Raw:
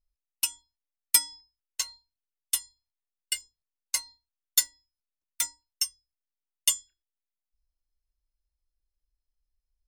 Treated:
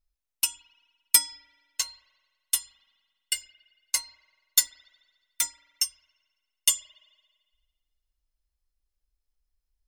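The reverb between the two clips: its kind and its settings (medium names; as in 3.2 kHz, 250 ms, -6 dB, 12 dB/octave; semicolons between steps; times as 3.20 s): spring tank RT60 1.6 s, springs 42 ms, chirp 50 ms, DRR 18 dB; trim +2 dB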